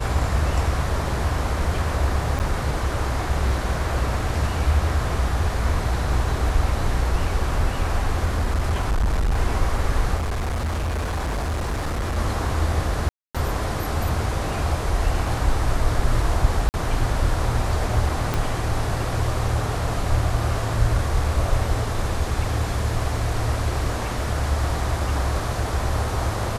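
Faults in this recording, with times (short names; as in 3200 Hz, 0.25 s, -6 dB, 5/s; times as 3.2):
2.39–2.4 gap 9.1 ms
8.25–9.39 clipped -17 dBFS
10.16–12.18 clipped -21.5 dBFS
13.09–13.35 gap 0.256 s
16.69–16.74 gap 49 ms
18.34 pop -9 dBFS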